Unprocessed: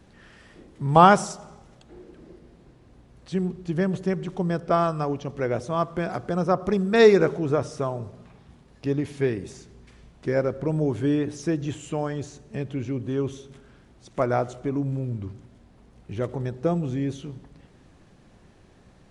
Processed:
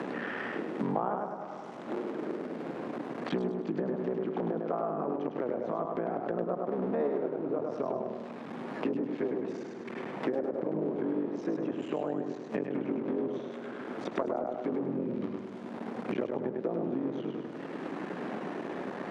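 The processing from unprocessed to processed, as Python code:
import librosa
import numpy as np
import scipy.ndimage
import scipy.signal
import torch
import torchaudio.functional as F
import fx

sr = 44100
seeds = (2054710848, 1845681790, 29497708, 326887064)

p1 = fx.cycle_switch(x, sr, every=3, mode='muted')
p2 = scipy.signal.sosfilt(scipy.signal.butter(4, 220.0, 'highpass', fs=sr, output='sos'), p1)
p3 = fx.high_shelf(p2, sr, hz=5300.0, db=-11.0)
p4 = fx.over_compress(p3, sr, threshold_db=-33.0, ratio=-1.0)
p5 = p3 + F.gain(torch.from_numpy(p4), -2.0).numpy()
p6 = fx.env_lowpass_down(p5, sr, base_hz=890.0, full_db=-21.5)
p7 = p6 + fx.echo_feedback(p6, sr, ms=102, feedback_pct=37, wet_db=-4.0, dry=0)
p8 = fx.band_squash(p7, sr, depth_pct=100)
y = F.gain(torch.from_numpy(p8), -8.0).numpy()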